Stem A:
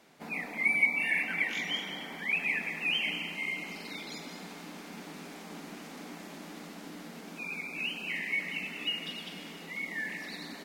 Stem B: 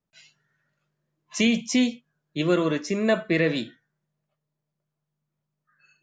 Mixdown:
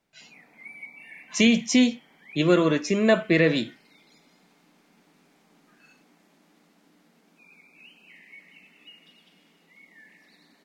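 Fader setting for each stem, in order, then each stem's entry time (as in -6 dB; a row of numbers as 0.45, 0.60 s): -16.5, +2.5 dB; 0.00, 0.00 s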